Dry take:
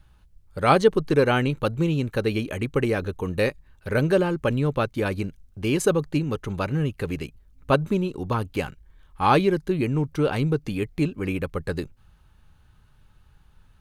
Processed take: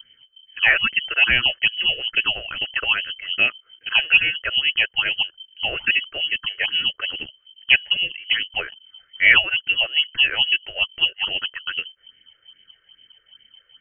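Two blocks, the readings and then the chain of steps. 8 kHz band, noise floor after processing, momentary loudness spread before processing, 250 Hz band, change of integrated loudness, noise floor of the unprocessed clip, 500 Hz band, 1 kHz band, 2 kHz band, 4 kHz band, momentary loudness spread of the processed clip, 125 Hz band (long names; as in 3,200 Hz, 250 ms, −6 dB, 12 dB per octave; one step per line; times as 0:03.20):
below −40 dB, −62 dBFS, 11 LU, −20.5 dB, +5.5 dB, −57 dBFS, −15.5 dB, −8.5 dB, +14.0 dB, +20.0 dB, 12 LU, −20.0 dB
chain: voice inversion scrambler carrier 3,100 Hz
all-pass phaser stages 6, 2.4 Hz, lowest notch 220–1,100 Hz
level +5.5 dB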